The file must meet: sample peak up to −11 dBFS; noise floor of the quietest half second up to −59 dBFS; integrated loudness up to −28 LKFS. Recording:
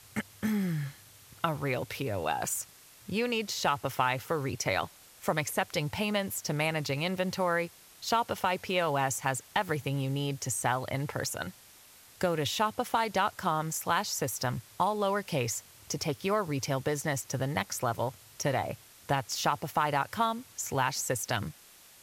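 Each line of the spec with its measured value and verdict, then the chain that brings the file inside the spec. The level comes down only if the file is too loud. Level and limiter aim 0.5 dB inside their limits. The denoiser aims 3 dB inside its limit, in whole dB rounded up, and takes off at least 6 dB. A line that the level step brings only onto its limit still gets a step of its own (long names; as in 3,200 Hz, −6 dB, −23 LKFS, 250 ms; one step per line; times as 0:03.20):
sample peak −14.0 dBFS: in spec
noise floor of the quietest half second −56 dBFS: out of spec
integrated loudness −31.5 LKFS: in spec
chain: broadband denoise 6 dB, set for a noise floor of −56 dBFS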